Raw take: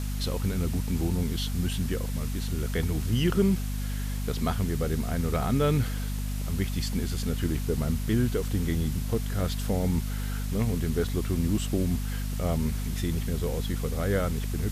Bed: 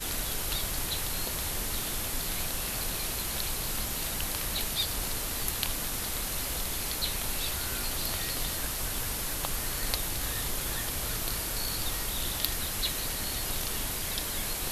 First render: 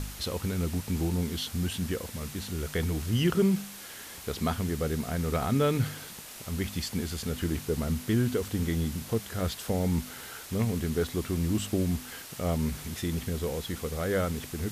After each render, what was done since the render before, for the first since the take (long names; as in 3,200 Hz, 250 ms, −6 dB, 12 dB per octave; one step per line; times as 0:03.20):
hum removal 50 Hz, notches 5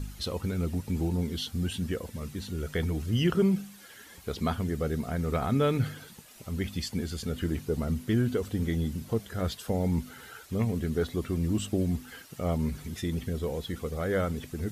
broadband denoise 11 dB, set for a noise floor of −44 dBFS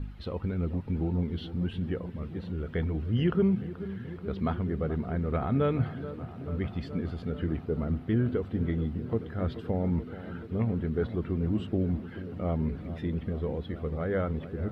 high-frequency loss of the air 440 metres
delay with a low-pass on its return 431 ms, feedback 79%, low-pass 1,600 Hz, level −13.5 dB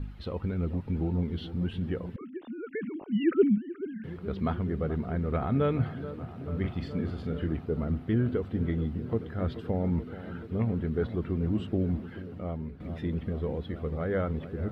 0:02.16–0:04.04: three sine waves on the formant tracks
0:06.52–0:07.48: double-tracking delay 43 ms −6.5 dB
0:12.05–0:12.80: fade out, to −12 dB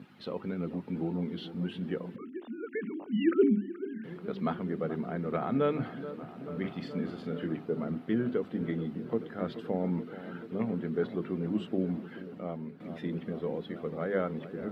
high-pass filter 170 Hz 24 dB per octave
mains-hum notches 50/100/150/200/250/300/350/400 Hz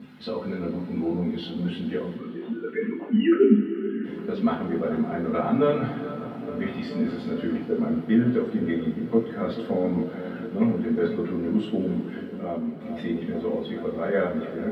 coupled-rooms reverb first 0.28 s, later 4 s, from −21 dB, DRR −6 dB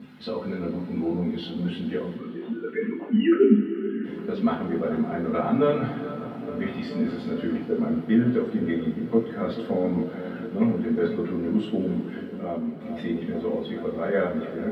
no processing that can be heard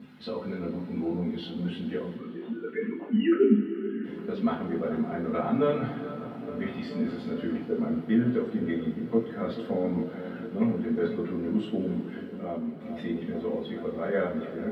level −3.5 dB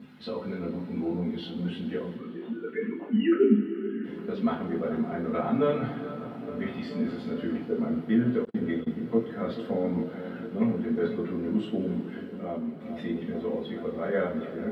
0:08.45–0:08.88: noise gate −33 dBFS, range −40 dB